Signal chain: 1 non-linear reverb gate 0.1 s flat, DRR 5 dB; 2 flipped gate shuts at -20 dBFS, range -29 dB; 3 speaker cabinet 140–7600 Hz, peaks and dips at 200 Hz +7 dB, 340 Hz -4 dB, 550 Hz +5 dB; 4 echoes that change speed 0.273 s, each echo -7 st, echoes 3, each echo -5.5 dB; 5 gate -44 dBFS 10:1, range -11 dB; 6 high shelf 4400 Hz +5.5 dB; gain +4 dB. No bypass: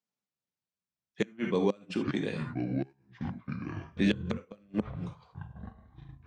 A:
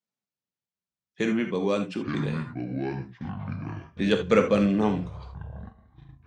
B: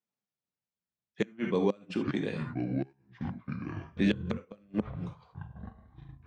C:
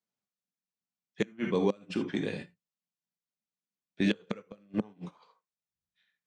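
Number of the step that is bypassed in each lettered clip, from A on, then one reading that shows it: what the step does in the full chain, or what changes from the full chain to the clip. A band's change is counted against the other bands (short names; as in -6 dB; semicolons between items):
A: 2, 1 kHz band +4.0 dB; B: 6, 4 kHz band -2.0 dB; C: 4, 125 Hz band -4.0 dB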